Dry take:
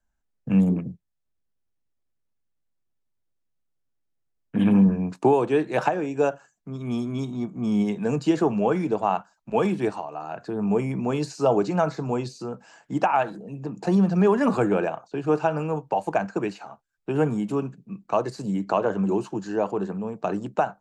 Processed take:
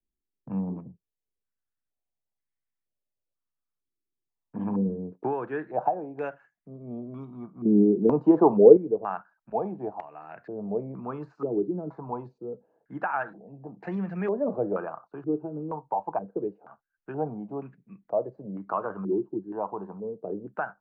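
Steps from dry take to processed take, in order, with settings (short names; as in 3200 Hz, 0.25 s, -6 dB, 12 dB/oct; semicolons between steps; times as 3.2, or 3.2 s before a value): 7.65–8.77 bell 380 Hz +13.5 dB 2.6 oct; stepped low-pass 2.1 Hz 360–2000 Hz; gain -11.5 dB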